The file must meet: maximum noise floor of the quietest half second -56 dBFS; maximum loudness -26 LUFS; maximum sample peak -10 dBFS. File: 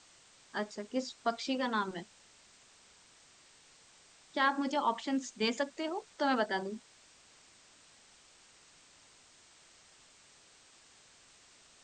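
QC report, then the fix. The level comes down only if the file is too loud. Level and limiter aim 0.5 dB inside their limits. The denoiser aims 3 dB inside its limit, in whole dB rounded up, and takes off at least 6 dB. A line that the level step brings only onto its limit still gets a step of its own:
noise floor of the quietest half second -62 dBFS: OK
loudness -34.5 LUFS: OK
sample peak -16.5 dBFS: OK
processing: none

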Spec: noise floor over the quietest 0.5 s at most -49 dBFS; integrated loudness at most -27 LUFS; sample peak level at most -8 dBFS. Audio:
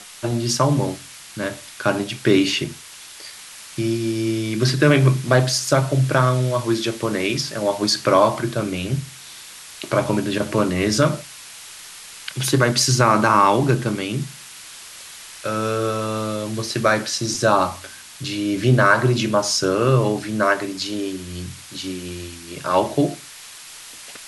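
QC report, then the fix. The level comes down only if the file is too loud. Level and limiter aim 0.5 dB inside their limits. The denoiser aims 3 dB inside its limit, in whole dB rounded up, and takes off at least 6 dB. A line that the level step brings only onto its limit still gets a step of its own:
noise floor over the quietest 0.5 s -40 dBFS: fail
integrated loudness -20.0 LUFS: fail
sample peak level -3.0 dBFS: fail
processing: denoiser 6 dB, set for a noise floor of -40 dBFS; gain -7.5 dB

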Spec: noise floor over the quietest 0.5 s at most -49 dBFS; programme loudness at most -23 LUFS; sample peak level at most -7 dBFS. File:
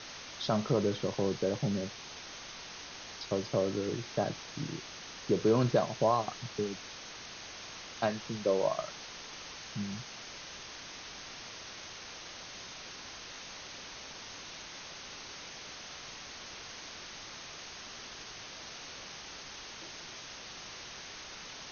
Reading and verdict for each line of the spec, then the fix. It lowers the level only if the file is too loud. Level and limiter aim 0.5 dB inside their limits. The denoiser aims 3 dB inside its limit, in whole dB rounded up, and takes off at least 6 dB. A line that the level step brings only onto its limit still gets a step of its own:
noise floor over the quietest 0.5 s -47 dBFS: fail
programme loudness -37.0 LUFS: OK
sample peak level -15.5 dBFS: OK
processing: denoiser 6 dB, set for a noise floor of -47 dBFS

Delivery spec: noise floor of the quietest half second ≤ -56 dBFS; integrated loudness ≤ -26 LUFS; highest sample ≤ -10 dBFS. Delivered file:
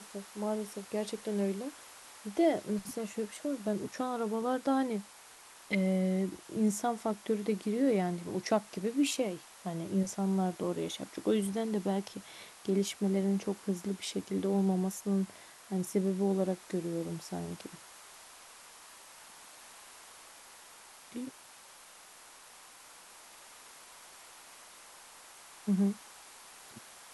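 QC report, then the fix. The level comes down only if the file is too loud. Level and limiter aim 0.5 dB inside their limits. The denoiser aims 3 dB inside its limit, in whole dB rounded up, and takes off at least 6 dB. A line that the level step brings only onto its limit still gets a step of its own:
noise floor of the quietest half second -55 dBFS: fail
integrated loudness -33.5 LUFS: OK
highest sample -17.0 dBFS: OK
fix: denoiser 6 dB, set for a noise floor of -55 dBFS

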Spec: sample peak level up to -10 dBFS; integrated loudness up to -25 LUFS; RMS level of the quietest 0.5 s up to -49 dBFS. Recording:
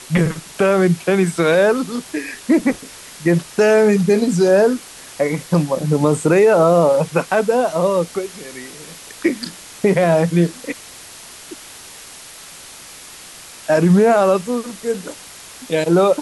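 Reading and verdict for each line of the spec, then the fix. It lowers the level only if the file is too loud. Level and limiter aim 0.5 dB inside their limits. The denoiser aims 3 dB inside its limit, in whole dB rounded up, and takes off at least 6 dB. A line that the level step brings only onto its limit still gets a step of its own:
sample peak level -4.5 dBFS: fail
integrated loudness -16.5 LUFS: fail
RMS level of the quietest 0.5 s -38 dBFS: fail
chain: denoiser 6 dB, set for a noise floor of -38 dBFS; gain -9 dB

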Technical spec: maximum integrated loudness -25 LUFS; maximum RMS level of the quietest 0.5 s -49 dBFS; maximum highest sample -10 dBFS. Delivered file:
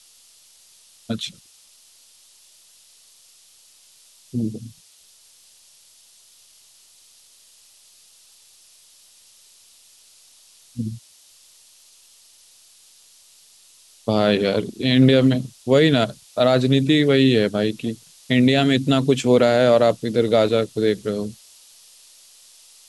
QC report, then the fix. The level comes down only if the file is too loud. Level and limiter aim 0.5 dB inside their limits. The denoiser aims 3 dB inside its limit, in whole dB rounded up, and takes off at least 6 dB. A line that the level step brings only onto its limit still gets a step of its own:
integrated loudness -19.0 LUFS: fail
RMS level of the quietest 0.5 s -53 dBFS: OK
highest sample -5.0 dBFS: fail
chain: gain -6.5 dB

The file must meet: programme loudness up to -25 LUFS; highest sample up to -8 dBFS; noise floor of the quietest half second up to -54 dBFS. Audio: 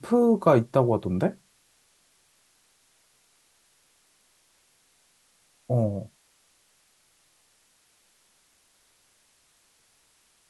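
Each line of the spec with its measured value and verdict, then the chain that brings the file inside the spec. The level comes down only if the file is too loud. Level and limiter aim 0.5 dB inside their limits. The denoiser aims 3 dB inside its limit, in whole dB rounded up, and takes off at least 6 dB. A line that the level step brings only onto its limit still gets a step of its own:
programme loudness -24.0 LUFS: fail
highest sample -6.0 dBFS: fail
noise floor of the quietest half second -65 dBFS: OK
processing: gain -1.5 dB; limiter -8.5 dBFS

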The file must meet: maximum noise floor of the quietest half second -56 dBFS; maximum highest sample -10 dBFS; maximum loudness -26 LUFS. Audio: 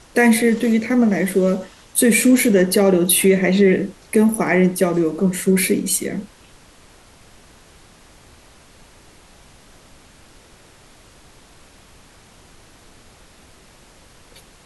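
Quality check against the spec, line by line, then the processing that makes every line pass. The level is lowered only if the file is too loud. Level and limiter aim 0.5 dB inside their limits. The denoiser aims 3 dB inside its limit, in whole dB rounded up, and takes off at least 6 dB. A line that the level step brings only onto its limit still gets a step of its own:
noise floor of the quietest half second -48 dBFS: fail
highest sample -5.0 dBFS: fail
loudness -16.5 LUFS: fail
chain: gain -10 dB

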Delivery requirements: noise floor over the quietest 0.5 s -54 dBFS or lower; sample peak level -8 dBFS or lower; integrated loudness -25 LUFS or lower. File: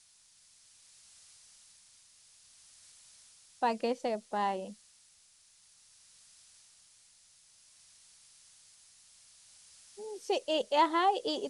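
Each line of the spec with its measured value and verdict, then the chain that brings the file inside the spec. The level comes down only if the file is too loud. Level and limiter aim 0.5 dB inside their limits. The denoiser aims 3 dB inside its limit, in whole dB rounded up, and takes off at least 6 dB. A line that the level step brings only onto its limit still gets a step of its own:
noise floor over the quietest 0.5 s -64 dBFS: OK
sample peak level -15.5 dBFS: OK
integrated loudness -32.0 LUFS: OK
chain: none

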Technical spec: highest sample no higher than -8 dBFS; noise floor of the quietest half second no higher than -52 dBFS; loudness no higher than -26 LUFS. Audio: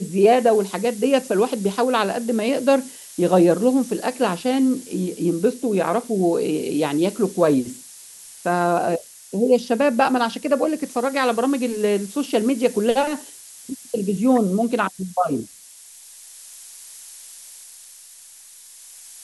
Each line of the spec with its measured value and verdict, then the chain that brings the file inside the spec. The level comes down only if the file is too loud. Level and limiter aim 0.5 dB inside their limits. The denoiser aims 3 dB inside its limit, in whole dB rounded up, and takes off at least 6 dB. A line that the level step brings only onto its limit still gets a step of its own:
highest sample -5.0 dBFS: fail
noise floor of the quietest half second -45 dBFS: fail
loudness -20.5 LUFS: fail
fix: denoiser 6 dB, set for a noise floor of -45 dBFS; gain -6 dB

